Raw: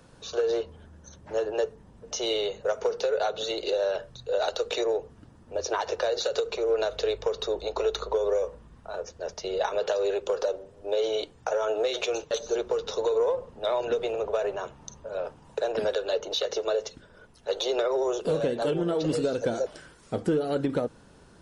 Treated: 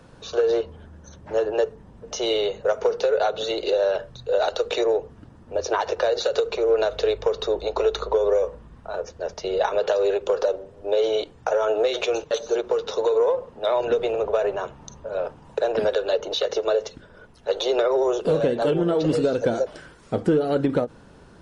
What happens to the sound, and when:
12.30–13.76 s: bass shelf 140 Hz -9 dB
whole clip: treble shelf 5 kHz -9 dB; endings held to a fixed fall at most 460 dB/s; trim +5.5 dB

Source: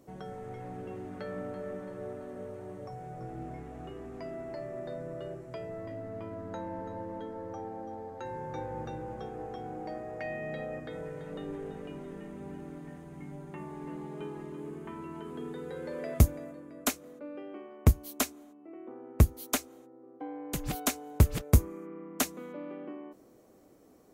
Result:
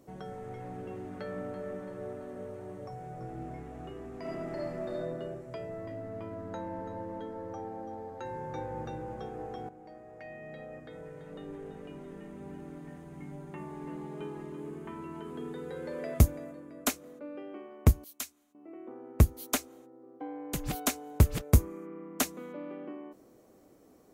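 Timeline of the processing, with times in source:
4.17–4.95 s: reverb throw, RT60 1.5 s, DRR -4.5 dB
9.69–13.22 s: fade in linear, from -12.5 dB
18.04–18.55 s: amplifier tone stack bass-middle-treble 5-5-5

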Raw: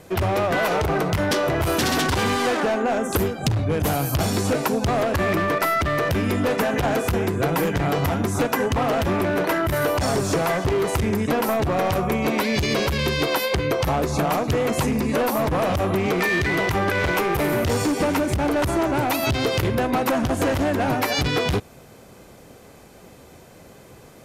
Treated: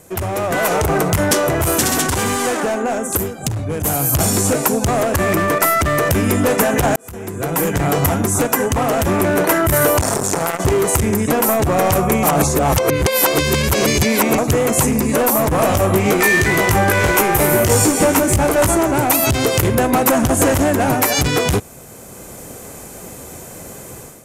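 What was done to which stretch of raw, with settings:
6.96–8.10 s: fade in
10.01–10.60 s: transformer saturation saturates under 800 Hz
12.23–14.38 s: reverse
15.56–18.75 s: doubling 19 ms -5 dB
whole clip: resonant high shelf 5.8 kHz +9 dB, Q 1.5; level rider; trim -1 dB

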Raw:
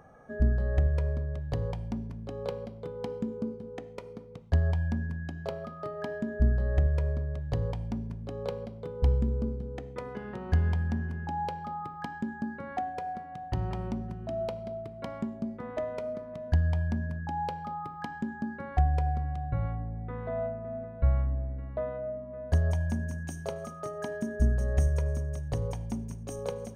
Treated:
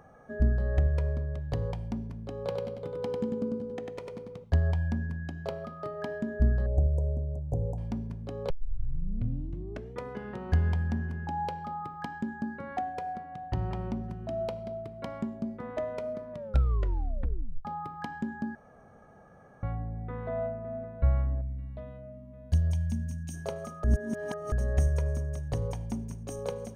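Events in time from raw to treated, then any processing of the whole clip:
2.36–4.44 s: feedback delay 97 ms, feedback 34%, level -3.5 dB
6.66–7.78 s: elliptic band-stop 750–7000 Hz
8.50 s: tape start 1.50 s
13.17–14.04 s: treble shelf 6.2 kHz -7 dB
16.32 s: tape stop 1.33 s
18.55–19.63 s: room tone
21.41–23.34 s: high-order bell 770 Hz -12.5 dB 2.9 oct
23.84–24.52 s: reverse

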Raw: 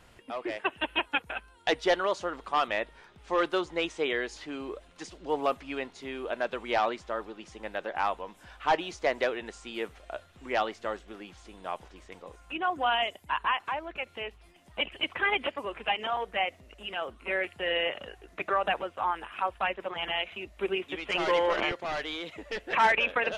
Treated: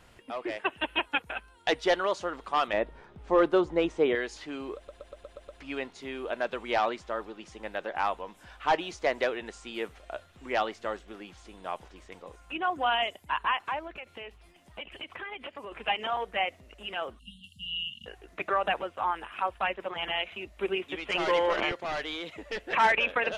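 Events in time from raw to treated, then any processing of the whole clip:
2.73–4.15 s: tilt shelf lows +7.5 dB, about 1.3 kHz
4.76 s: stutter in place 0.12 s, 7 plays
13.87–15.72 s: compression 4:1, threshold -38 dBFS
17.19–18.06 s: brick-wall FIR band-stop 250–2700 Hz

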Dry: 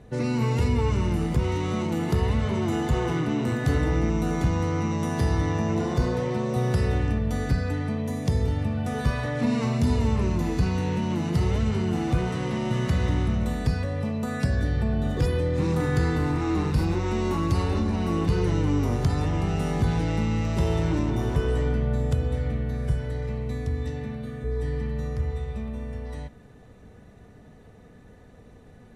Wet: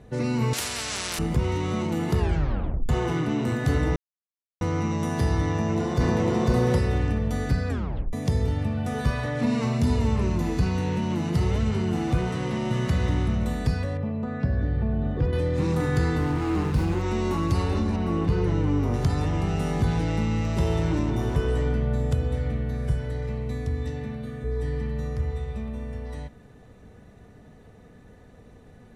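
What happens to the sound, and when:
0.53–1.19 s: spectrum-flattening compressor 10:1
2.18 s: tape stop 0.71 s
3.96–4.61 s: mute
5.50–6.28 s: echo throw 500 ms, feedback 15%, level 0 dB
7.69 s: tape stop 0.44 s
13.97–15.33 s: tape spacing loss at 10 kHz 34 dB
16.20–17.02 s: sliding maximum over 5 samples
17.96–18.94 s: treble shelf 3.7 kHz -10 dB

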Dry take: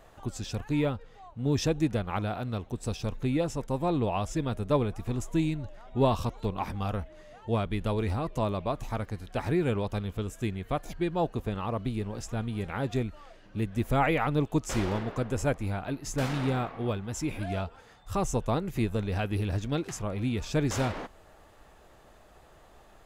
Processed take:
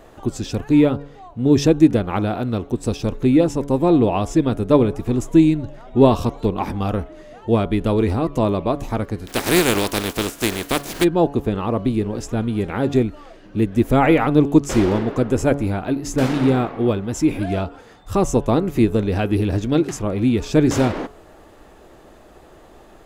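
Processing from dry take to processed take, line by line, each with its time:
9.26–11.03 s: spectral contrast reduction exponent 0.36
whole clip: peaking EQ 320 Hz +9 dB 1.3 oct; de-hum 141.8 Hz, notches 11; trim +7 dB

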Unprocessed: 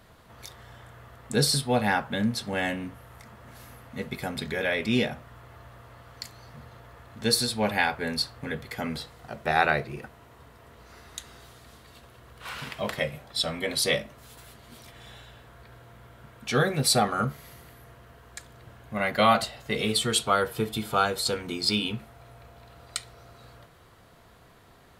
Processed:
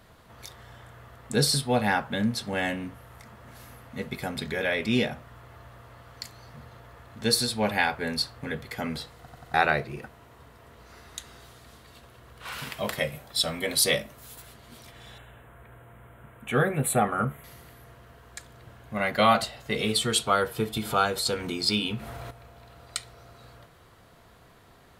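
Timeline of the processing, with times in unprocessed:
9.18 s: stutter in place 0.09 s, 4 plays
12.52–14.42 s: treble shelf 9.2 kHz +12 dB
15.18–17.44 s: Butterworth band-stop 5 kHz, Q 0.9
20.77–22.31 s: upward compressor, threshold -26 dBFS

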